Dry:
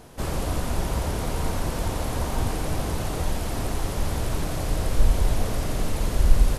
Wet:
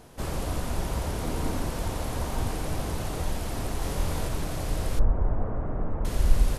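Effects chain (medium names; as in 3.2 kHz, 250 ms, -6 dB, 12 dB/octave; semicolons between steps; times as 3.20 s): 1.24–1.65 s: peaking EQ 280 Hz +7 dB; 3.79–4.28 s: doubling 24 ms -3 dB; 4.99–6.05 s: low-pass 1.4 kHz 24 dB/octave; trim -3.5 dB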